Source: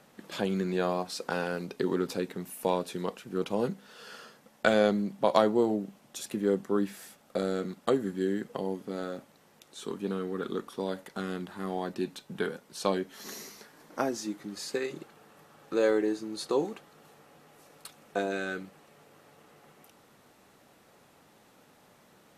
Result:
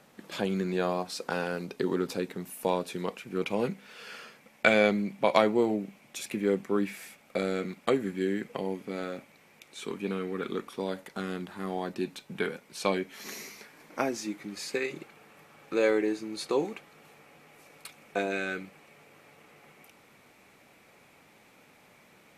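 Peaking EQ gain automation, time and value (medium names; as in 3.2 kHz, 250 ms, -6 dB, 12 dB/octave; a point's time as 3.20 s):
peaking EQ 2.3 kHz 0.38 oct
2.75 s +3 dB
3.48 s +15 dB
10.56 s +15 dB
11.00 s +5.5 dB
12.03 s +5.5 dB
12.47 s +12 dB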